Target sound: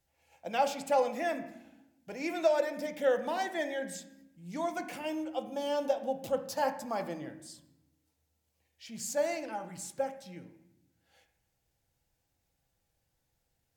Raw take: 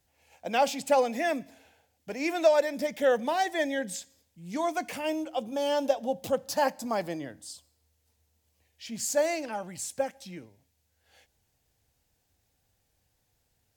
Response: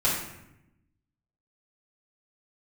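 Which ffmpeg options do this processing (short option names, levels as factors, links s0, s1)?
-filter_complex "[0:a]asplit=2[s0][s1];[1:a]atrim=start_sample=2205,lowpass=2900[s2];[s1][s2]afir=irnorm=-1:irlink=0,volume=0.141[s3];[s0][s3]amix=inputs=2:normalize=0,volume=0.473"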